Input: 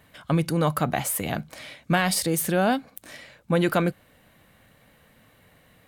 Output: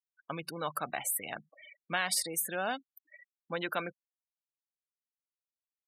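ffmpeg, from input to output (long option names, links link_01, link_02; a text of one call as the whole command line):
ffmpeg -i in.wav -af "afftfilt=real='re*gte(hypot(re,im),0.0282)':imag='im*gte(hypot(re,im),0.0282)':win_size=1024:overlap=0.75,agate=range=-6dB:threshold=-54dB:ratio=16:detection=peak,highpass=frequency=1300:poles=1,volume=-4.5dB" out.wav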